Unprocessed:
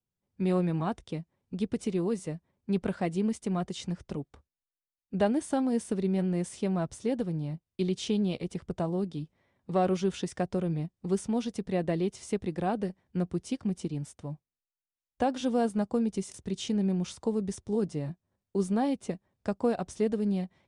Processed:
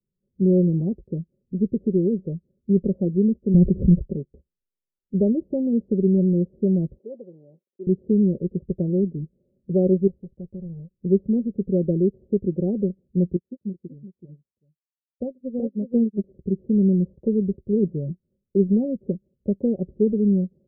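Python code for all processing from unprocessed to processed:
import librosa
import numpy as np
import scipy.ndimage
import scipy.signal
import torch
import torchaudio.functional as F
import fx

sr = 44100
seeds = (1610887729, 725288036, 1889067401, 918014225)

y = fx.chain(x, sr, fx.riaa(side='playback'),
    fx.pre_swell(db_per_s=74.0), at=(3.54, 4.07))
y = fx.chain(y, sr, fx.law_mismatch(coded='mu'),
    fx.highpass(hz=850.0, slope=12), at=(6.98, 7.87))
y = fx.chain(y, sr, fx.halfwave_hold(),
    fx.tone_stack(knobs='5-5-5'), at=(10.07, 10.91))
y = fx.chain(y, sr, fx.highpass(hz=68.0, slope=12),
    fx.echo_single(ms=377, db=-5.0),
    fx.upward_expand(threshold_db=-42.0, expansion=2.5), at=(13.36, 16.24))
y = scipy.signal.sosfilt(scipy.signal.cheby1(5, 1.0, 520.0, 'lowpass', fs=sr, output='sos'), y)
y = y + 0.55 * np.pad(y, (int(5.2 * sr / 1000.0), 0))[:len(y)]
y = y * 10.0 ** (7.0 / 20.0)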